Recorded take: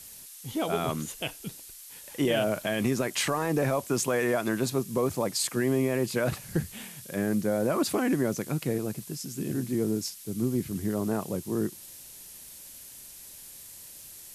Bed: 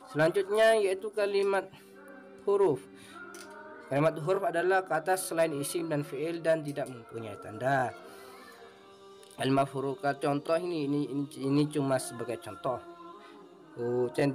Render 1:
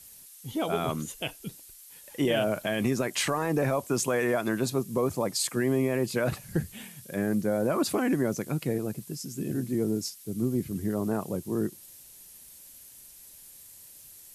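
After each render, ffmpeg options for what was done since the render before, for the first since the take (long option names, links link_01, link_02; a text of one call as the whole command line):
ffmpeg -i in.wav -af "afftdn=noise_reduction=6:noise_floor=-47" out.wav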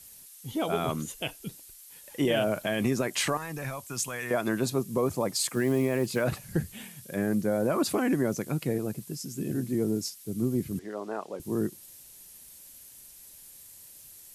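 ffmpeg -i in.wav -filter_complex "[0:a]asettb=1/sr,asplit=3[link_01][link_02][link_03];[link_01]atrim=end=3.374[link_04];[link_02]atrim=start=3.37:end=4.31,asetpts=PTS-STARTPTS,afade=type=in:duration=0.004:curve=qsin,afade=type=out:start_time=0.936:duration=0.004:curve=qsin,equalizer=frequency=400:width=0.48:gain=-15[link_05];[link_03]atrim=start=4.306[link_06];[link_04][link_05]acrossfade=duration=0.004:curve1=hsin:curve2=qsin[link_07];[link_07][link_06]acrossfade=duration=0.004:curve1=qsin:curve2=hsin,asettb=1/sr,asplit=3[link_08][link_09][link_10];[link_08]atrim=end=5.294[link_11];[link_09]atrim=start=5.29:end=6.23,asetpts=PTS-STARTPTS,afade=type=in:duration=0.004:curve=qsin,afade=type=out:start_time=0.936:duration=0.004:curve=qsin,acrusher=bits=7:mode=log:mix=0:aa=0.000001[link_12];[link_10]atrim=start=6.226[link_13];[link_11][link_12]acrossfade=duration=0.004:curve1=hsin:curve2=qsin[link_14];[link_14][link_13]acrossfade=duration=0.004:curve1=qsin:curve2=hsin,asettb=1/sr,asplit=3[link_15][link_16][link_17];[link_15]atrim=end=10.794[link_18];[link_16]atrim=start=10.79:end=11.4,asetpts=PTS-STARTPTS,afade=type=in:duration=0.004:curve=qsin,afade=type=out:start_time=0.606:duration=0.004:curve=qsin,highpass=480,lowpass=4900[link_19];[link_17]atrim=start=11.396[link_20];[link_18][link_19]acrossfade=duration=0.004:curve1=hsin:curve2=qsin[link_21];[link_21][link_20]acrossfade=duration=0.004:curve1=qsin:curve2=hsin" out.wav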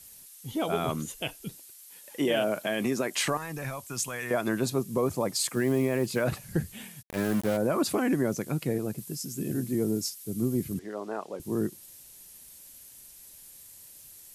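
ffmpeg -i in.wav -filter_complex "[0:a]asettb=1/sr,asplit=3[link_01][link_02][link_03];[link_01]atrim=end=1.594[link_04];[link_02]atrim=start=1.59:end=3.28,asetpts=PTS-STARTPTS,afade=type=in:duration=0.004:curve=qsin,afade=type=out:start_time=1.686:duration=0.004:curve=qsin,highpass=190[link_05];[link_03]atrim=start=3.276[link_06];[link_04][link_05]acrossfade=duration=0.004:curve1=hsin:curve2=qsin[link_07];[link_07][link_06]acrossfade=duration=0.004:curve1=qsin:curve2=hsin,asplit=3[link_08][link_09][link_10];[link_08]afade=type=out:start_time=7.01:duration=0.02[link_11];[link_09]aeval=exprs='val(0)*gte(abs(val(0)),0.0251)':channel_layout=same,afade=type=in:start_time=7.01:duration=0.02,afade=type=out:start_time=7.56:duration=0.02[link_12];[link_10]afade=type=in:start_time=7.56:duration=0.02[link_13];[link_11][link_12][link_13]amix=inputs=3:normalize=0,asettb=1/sr,asplit=3[link_14][link_15][link_16];[link_14]atrim=end=8.984[link_17];[link_15]atrim=start=8.98:end=10.74,asetpts=PTS-STARTPTS,afade=type=in:duration=0.004:curve=qsin,afade=type=out:start_time=1.756:duration=0.004:curve=qsin,highshelf=frequency=8000:gain=6[link_18];[link_16]atrim=start=10.736[link_19];[link_17][link_18]acrossfade=duration=0.004:curve1=hsin:curve2=qsin[link_20];[link_20][link_19]acrossfade=duration=0.004:curve1=qsin:curve2=hsin" out.wav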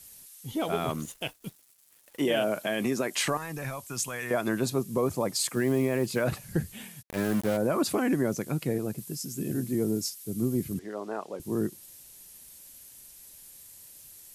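ffmpeg -i in.wav -filter_complex "[0:a]asettb=1/sr,asplit=3[link_01][link_02][link_03];[link_01]atrim=end=0.604[link_04];[link_02]atrim=start=0.6:end=2.22,asetpts=PTS-STARTPTS,afade=type=in:duration=0.004:curve=qsin,afade=type=out:start_time=1.616:duration=0.004:curve=qsin,aeval=exprs='sgn(val(0))*max(abs(val(0))-0.00422,0)':channel_layout=same[link_05];[link_03]atrim=start=2.216[link_06];[link_04][link_05]acrossfade=duration=0.004:curve1=hsin:curve2=qsin[link_07];[link_07][link_06]acrossfade=duration=0.004:curve1=qsin:curve2=hsin" out.wav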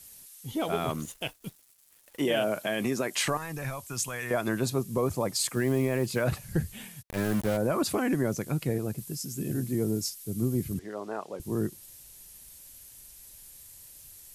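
ffmpeg -i in.wav -af "asubboost=boost=2:cutoff=130" out.wav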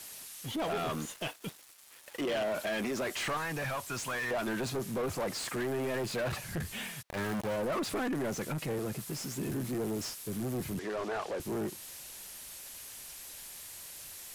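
ffmpeg -i in.wav -filter_complex "[0:a]asoftclip=type=tanh:threshold=-28.5dB,asplit=2[link_01][link_02];[link_02]highpass=frequency=720:poles=1,volume=22dB,asoftclip=type=tanh:threshold=-28.5dB[link_03];[link_01][link_03]amix=inputs=2:normalize=0,lowpass=frequency=3000:poles=1,volume=-6dB" out.wav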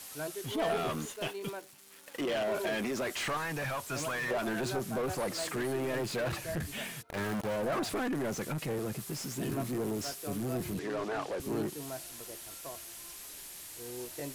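ffmpeg -i in.wav -i bed.wav -filter_complex "[1:a]volume=-13.5dB[link_01];[0:a][link_01]amix=inputs=2:normalize=0" out.wav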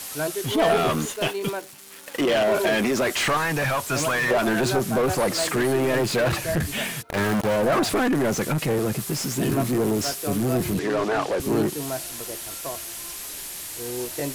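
ffmpeg -i in.wav -af "volume=11.5dB" out.wav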